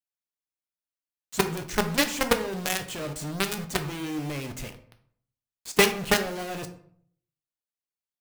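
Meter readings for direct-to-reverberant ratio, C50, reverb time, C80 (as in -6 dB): 6.0 dB, 12.0 dB, 0.60 s, 15.5 dB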